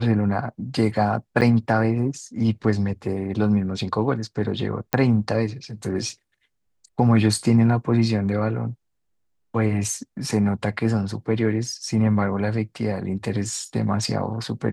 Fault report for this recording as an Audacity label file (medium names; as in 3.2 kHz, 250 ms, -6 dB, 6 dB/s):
1.410000	1.420000	dropout 6.7 ms
4.930000	4.930000	pop -7 dBFS